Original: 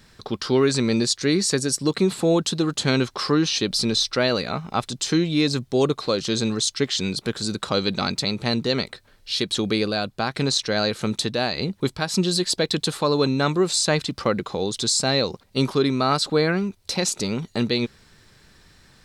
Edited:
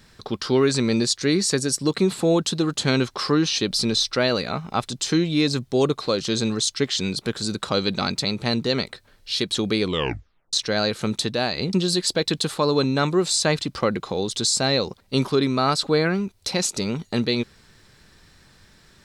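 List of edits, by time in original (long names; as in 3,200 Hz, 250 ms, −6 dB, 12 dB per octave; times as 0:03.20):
0:09.80: tape stop 0.73 s
0:11.73–0:12.16: remove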